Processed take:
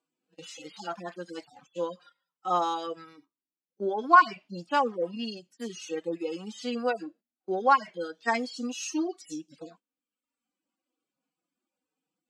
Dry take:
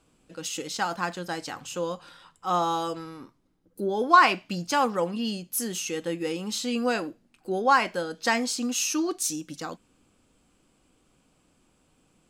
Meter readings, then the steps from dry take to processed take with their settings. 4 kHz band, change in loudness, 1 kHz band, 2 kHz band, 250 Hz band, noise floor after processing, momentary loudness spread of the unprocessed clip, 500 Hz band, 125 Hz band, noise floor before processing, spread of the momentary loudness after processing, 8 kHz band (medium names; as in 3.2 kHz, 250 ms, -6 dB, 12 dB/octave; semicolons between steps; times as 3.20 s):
-8.0 dB, -2.0 dB, -1.5 dB, -3.5 dB, -4.5 dB, under -85 dBFS, 15 LU, -2.5 dB, -9.0 dB, -67 dBFS, 20 LU, -13.0 dB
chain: harmonic-percussive separation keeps harmonic; gate -48 dBFS, range -15 dB; reverb removal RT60 0.92 s; band-pass 260–6700 Hz